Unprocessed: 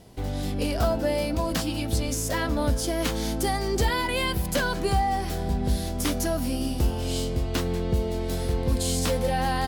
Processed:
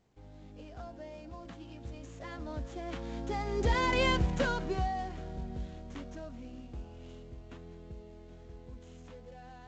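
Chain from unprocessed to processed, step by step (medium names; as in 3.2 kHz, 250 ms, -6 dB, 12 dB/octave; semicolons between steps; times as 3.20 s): median filter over 9 samples; Doppler pass-by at 4.05 s, 14 m/s, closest 4 m; µ-law 128 kbps 16 kHz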